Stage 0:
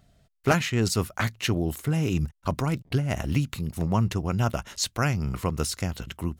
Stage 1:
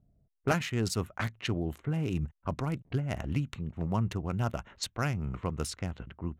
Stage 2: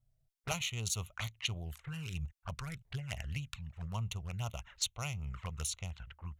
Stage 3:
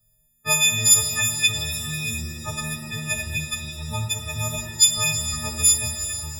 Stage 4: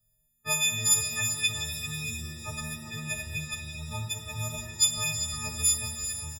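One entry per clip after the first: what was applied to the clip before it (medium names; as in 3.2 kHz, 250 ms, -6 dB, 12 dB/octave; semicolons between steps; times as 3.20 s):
local Wiener filter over 9 samples; level-controlled noise filter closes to 420 Hz, open at -23 dBFS; trim -6 dB
amplifier tone stack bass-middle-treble 10-0-10; touch-sensitive flanger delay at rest 8.6 ms, full sweep at -40.5 dBFS; trim +6 dB
partials quantised in pitch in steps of 6 st; pitch-shifted reverb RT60 3 s, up +7 st, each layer -8 dB, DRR 5 dB; trim +8 dB
delay 393 ms -10 dB; trim -7.5 dB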